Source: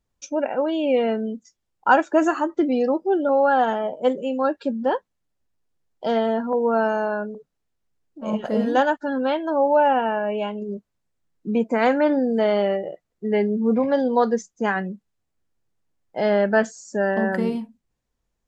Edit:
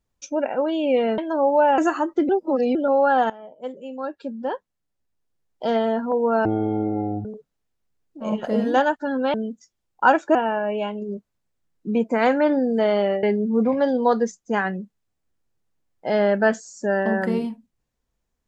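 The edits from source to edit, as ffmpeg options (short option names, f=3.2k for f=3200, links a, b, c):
-filter_complex "[0:a]asplit=11[a][b][c][d][e][f][g][h][i][j][k];[a]atrim=end=1.182[l];[b]atrim=start=9.348:end=9.952[m];[c]atrim=start=2.188:end=2.702[n];[d]atrim=start=2.698:end=3.162,asetpts=PTS-STARTPTS,areverse[o];[e]atrim=start=3.158:end=3.71,asetpts=PTS-STARTPTS,afade=t=out:st=0.548:d=0.004:c=hsin:silence=0.125893[p];[f]atrim=start=3.71:end=6.864,asetpts=PTS-STARTPTS,afade=t=in:d=2.42:silence=0.125893[q];[g]atrim=start=6.86:end=7.26,asetpts=PTS-STARTPTS,asetrate=22050,aresample=44100[r];[h]atrim=start=7.256:end=9.352[s];[i]atrim=start=1.178:end=2.192[t];[j]atrim=start=9.948:end=12.832[u];[k]atrim=start=13.338[v];[l][m]acrossfade=d=0.004:c1=hsin:c2=hsin[w];[w][n]acrossfade=d=0.004:c1=hsin:c2=hsin[x];[x][o]acrossfade=d=0.004:c1=hsin:c2=hsin[y];[p][q]concat=n=2:v=0:a=1[z];[y][z]acrossfade=d=0.004:c1=hsin:c2=hsin[aa];[aa][r]acrossfade=d=0.004:c1=hsin:c2=hsin[ab];[ab][s]acrossfade=d=0.004:c1=hsin:c2=hsin[ac];[ac][t]acrossfade=d=0.004:c1=hsin:c2=hsin[ad];[ad][u]acrossfade=d=0.004:c1=hsin:c2=hsin[ae];[ae][v]acrossfade=d=0.004:c1=hsin:c2=hsin"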